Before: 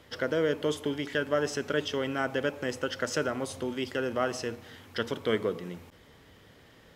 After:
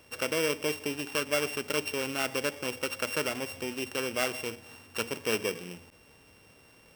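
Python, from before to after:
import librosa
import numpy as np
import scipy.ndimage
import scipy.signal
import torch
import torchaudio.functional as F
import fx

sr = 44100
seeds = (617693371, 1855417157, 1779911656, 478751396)

y = np.r_[np.sort(x[:len(x) // 16 * 16].reshape(-1, 16), axis=1).ravel(), x[len(x) // 16 * 16:]]
y = fx.low_shelf(y, sr, hz=410.0, db=-5.0)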